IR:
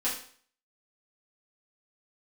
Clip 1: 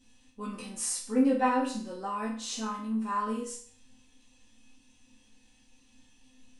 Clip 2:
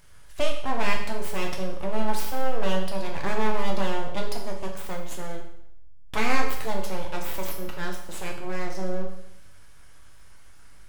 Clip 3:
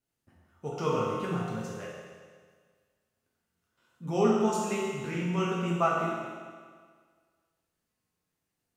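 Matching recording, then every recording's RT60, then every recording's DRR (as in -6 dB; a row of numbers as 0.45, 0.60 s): 1; 0.50, 0.75, 1.7 s; -8.5, 1.0, -6.0 dB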